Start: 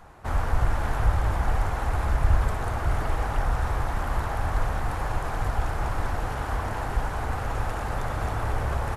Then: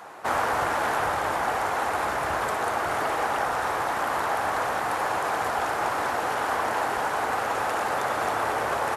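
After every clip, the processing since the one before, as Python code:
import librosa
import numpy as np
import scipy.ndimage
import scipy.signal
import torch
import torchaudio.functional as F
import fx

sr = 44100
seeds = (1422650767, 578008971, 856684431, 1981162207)

y = scipy.signal.sosfilt(scipy.signal.butter(2, 370.0, 'highpass', fs=sr, output='sos'), x)
y = fx.rider(y, sr, range_db=10, speed_s=2.0)
y = y * librosa.db_to_amplitude(7.0)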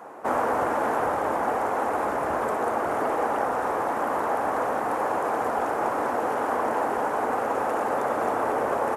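y = fx.graphic_eq(x, sr, hz=(250, 500, 1000, 4000), db=(11, 8, 4, -8))
y = y * librosa.db_to_amplitude(-5.5)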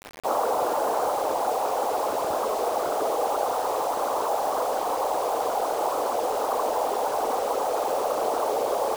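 y = fx.envelope_sharpen(x, sr, power=2.0)
y = fx.quant_dither(y, sr, seeds[0], bits=6, dither='none')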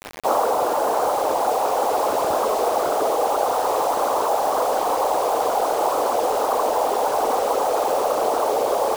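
y = fx.rider(x, sr, range_db=10, speed_s=0.5)
y = y * librosa.db_to_amplitude(5.0)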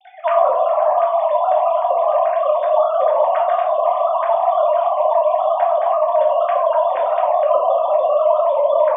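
y = fx.sine_speech(x, sr)
y = fx.room_shoebox(y, sr, seeds[1], volume_m3=530.0, walls='furnished', distance_m=2.7)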